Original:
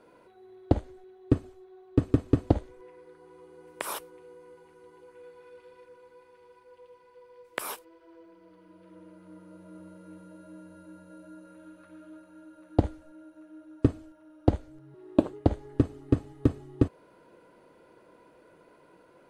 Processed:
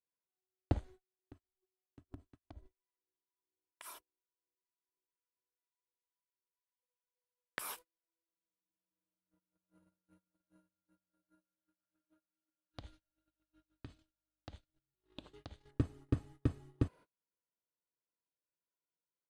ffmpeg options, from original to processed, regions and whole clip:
-filter_complex "[0:a]asettb=1/sr,asplit=3[a][b][c];[a]atrim=end=1.194[d];[b]atrim=start=1.19:end=6.83,asetpts=PTS-STARTPTS,afade=t=in:d=0.004:c=qsin,afade=t=out:st=5.636:d=0.004:c=qsin,acompressor=threshold=-36dB:ratio=12:attack=3.2:release=140:knee=1:detection=peak,acrossover=split=810[e][f];[e]aeval=exprs='val(0)*(1-0.7/2+0.7/2*cos(2*PI*2.1*n/s))':c=same[g];[f]aeval=exprs='val(0)*(1-0.7/2-0.7/2*cos(2*PI*2.1*n/s))':c=same[h];[g][h]amix=inputs=2:normalize=0,aecho=1:1:3:0.58,atrim=end_sample=248724[i];[c]atrim=start=6.826[j];[d][i]acrossfade=d=0.004:c1=hsin:c2=qsin[k];[k][j]acrossfade=d=0.004:c1=qsin:c2=hsin,asettb=1/sr,asplit=3[l][m][n];[l]atrim=end=12.724[o];[m]atrim=start=12.72:end=15.71,asetpts=PTS-STARTPTS,afade=t=in:d=0.004:c=qsin,afade=t=out:st=2.986:d=0.004:c=qsin,equalizer=f=3.7k:w=0.78:g=15,acompressor=threshold=-37dB:ratio=5:attack=3.2:release=140:knee=1:detection=peak,aeval=exprs='val(0)+0.00126*(sin(2*PI*50*n/s)+sin(2*PI*2*50*n/s)/2+sin(2*PI*3*50*n/s)/3+sin(2*PI*4*50*n/s)/4+sin(2*PI*5*50*n/s)/5)':c=same[p];[n]atrim=start=15.706[q];[o][p]acrossfade=d=0.004:c1=hsin:c2=qsin[r];[r][q]acrossfade=d=0.004:c1=qsin:c2=hsin,agate=range=-36dB:threshold=-44dB:ratio=16:detection=peak,equalizer=f=420:t=o:w=2.1:g=-8,volume=-6dB"

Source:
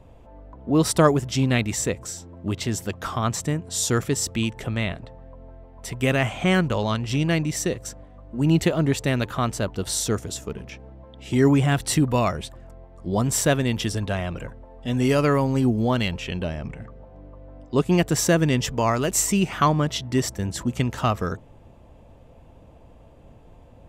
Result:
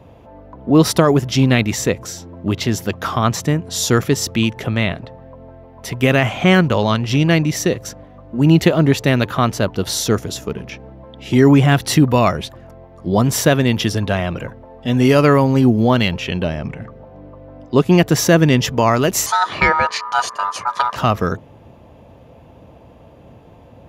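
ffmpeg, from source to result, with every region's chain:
-filter_complex "[0:a]asettb=1/sr,asplit=3[a][b][c];[a]atrim=end=19.264[d];[b]atrim=start=19.26:end=20.96,asetpts=PTS-STARTPTS,afade=t=in:d=0.004:c=qsin,afade=t=out:st=1.696:d=0.004:c=qsin,lowpass=f=9k:w=0.5412,lowpass=f=9k:w=1.3066,aecho=1:1:1.7:0.37,atrim=end_sample=74970,aeval=exprs='val(0)*sin(2*PI*1100*n/s)':c=same[e];[c]atrim=start=20.956[f];[d][e]acrossfade=d=0.004:c1=hsin:c2=qsin[g];[g][f]acrossfade=d=0.004:c1=qsin:c2=hsin,highpass=86,equalizer=f=8.2k:w=3.5:g=-13,alimiter=level_in=9dB:limit=-1dB:release=50:level=0:latency=1,volume=-1dB"

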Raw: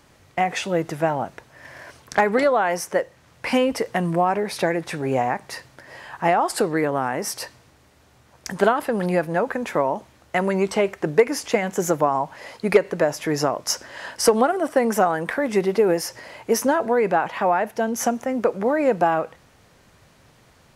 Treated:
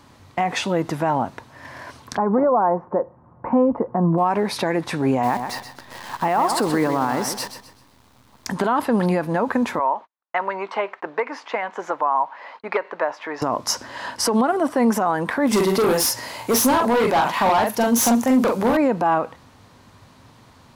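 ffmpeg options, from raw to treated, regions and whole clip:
-filter_complex "[0:a]asettb=1/sr,asplit=3[a][b][c];[a]atrim=end=2.174[d];[b]atrim=start=2.17:end=4.18,asetpts=PTS-STARTPTS,afade=t=in:d=0.004:c=qsin,afade=t=out:st=2.006:d=0.004:c=qsin,lowpass=f=1.1k:w=0.5412,lowpass=f=1.1k:w=1.3066,aecho=1:1:5.6:0.31,atrim=end_sample=88641[e];[c]atrim=start=4.176[f];[d][e]acrossfade=d=0.004:c1=hsin:c2=qsin[g];[g][f]acrossfade=d=0.004:c1=qsin:c2=hsin,asettb=1/sr,asplit=3[h][i][j];[h]atrim=end=5.234[k];[i]atrim=start=5.23:end=8.47,asetpts=PTS-STARTPTS,afade=t=in:d=0.004:c=qsin,afade=t=out:st=3.236:d=0.004:c=qsin,highpass=57,acrusher=bits=7:dc=4:mix=0:aa=0.000001,aecho=1:1:128|256|384|512:0.316|0.101|0.0324|0.0104,atrim=end_sample=142884[l];[j]atrim=start=8.466[m];[k][l]acrossfade=d=0.004:c1=hsin:c2=qsin[n];[n][m]acrossfade=d=0.004:c1=qsin:c2=hsin,asettb=1/sr,asplit=3[o][p][q];[o]atrim=end=9.794[r];[p]atrim=start=9.79:end=13.42,asetpts=PTS-STARTPTS,afade=t=in:d=0.004:c=qsin,afade=t=out:st=3.626:d=0.004:c=qsin,highpass=740,lowpass=2.2k,agate=range=-42dB:threshold=-53dB:ratio=16:release=100:detection=peak[s];[q]atrim=start=13.416[t];[r][s]acrossfade=d=0.004:c1=hsin:c2=qsin[u];[u][t]acrossfade=d=0.004:c1=qsin:c2=hsin,asettb=1/sr,asplit=3[v][w][x];[v]atrim=end=15.474[y];[w]atrim=start=15.47:end=18.77,asetpts=PTS-STARTPTS,afade=t=in:d=0.004:c=qsin,afade=t=out:st=3.296:d=0.004:c=qsin,aemphasis=mode=production:type=75kf,asplit=2[z][aa];[aa]adelay=43,volume=-4.5dB[ab];[z][ab]amix=inputs=2:normalize=0,atrim=end_sample=145530,asoftclip=type=hard:threshold=-18dB[ac];[x]atrim=start=18.766[ad];[y][ac]acrossfade=d=0.004:c1=hsin:c2=qsin[ae];[ae][ad]acrossfade=d=0.004:c1=qsin:c2=hsin,equalizer=f=100:t=o:w=0.67:g=8,equalizer=f=250:t=o:w=0.67:g=9,equalizer=f=1k:t=o:w=0.67:g=9,equalizer=f=4k:t=o:w=0.67:g=5,alimiter=limit=-10.5dB:level=0:latency=1:release=57"

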